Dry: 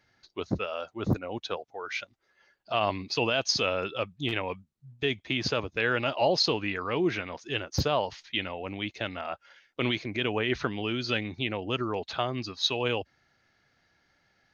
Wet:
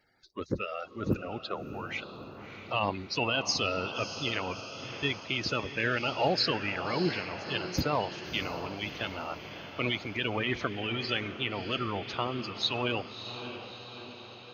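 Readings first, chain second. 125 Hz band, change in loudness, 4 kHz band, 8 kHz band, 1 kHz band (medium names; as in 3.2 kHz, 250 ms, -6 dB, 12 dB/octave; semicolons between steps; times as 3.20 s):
-2.0 dB, -2.0 dB, -1.5 dB, no reading, -1.0 dB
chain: coarse spectral quantiser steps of 30 dB; on a send: echo that smears into a reverb 633 ms, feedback 60%, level -10 dB; on the sum: trim -2 dB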